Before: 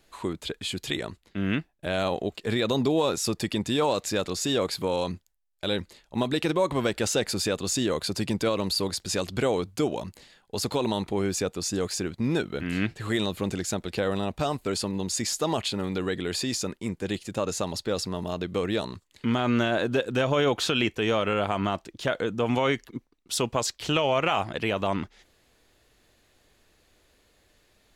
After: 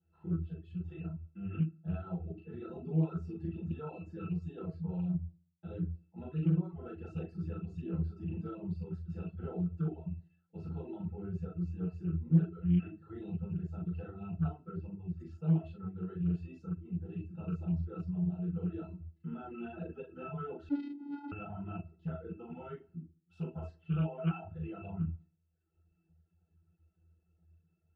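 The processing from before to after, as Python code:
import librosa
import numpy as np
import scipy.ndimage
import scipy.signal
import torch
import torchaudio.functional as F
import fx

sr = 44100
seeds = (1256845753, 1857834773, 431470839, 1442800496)

y = fx.zero_step(x, sr, step_db=-38.5, at=(2.98, 3.51))
y = fx.high_shelf(y, sr, hz=2200.0, db=-12.0)
y = fx.notch(y, sr, hz=670.0, q=12.0)
y = fx.octave_resonator(y, sr, note='E', decay_s=0.43)
y = fx.room_early_taps(y, sr, ms=(39, 61), db=(-4.0, -15.5))
y = fx.rev_fdn(y, sr, rt60_s=0.49, lf_ratio=1.1, hf_ratio=0.7, size_ms=35.0, drr_db=-7.5)
y = fx.dereverb_blind(y, sr, rt60_s=0.84)
y = fx.air_absorb(y, sr, metres=270.0, at=(14.71, 15.19), fade=0.02)
y = fx.vocoder(y, sr, bands=8, carrier='square', carrier_hz=286.0, at=(20.69, 21.32))
y = fx.doppler_dist(y, sr, depth_ms=0.34)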